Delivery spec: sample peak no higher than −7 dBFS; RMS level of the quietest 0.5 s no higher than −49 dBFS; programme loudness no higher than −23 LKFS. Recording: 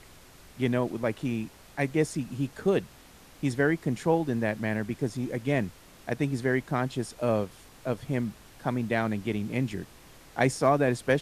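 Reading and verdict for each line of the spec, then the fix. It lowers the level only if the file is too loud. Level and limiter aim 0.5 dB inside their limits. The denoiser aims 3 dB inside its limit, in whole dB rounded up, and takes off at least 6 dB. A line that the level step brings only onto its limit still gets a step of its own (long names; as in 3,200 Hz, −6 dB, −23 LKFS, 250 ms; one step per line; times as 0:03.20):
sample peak −9.5 dBFS: in spec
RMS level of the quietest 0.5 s −52 dBFS: in spec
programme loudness −29.0 LKFS: in spec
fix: no processing needed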